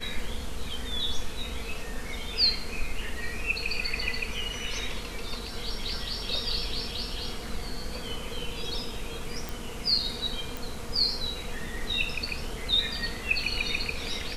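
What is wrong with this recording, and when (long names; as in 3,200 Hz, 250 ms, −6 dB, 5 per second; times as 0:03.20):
0:09.49: click
0:10.57: click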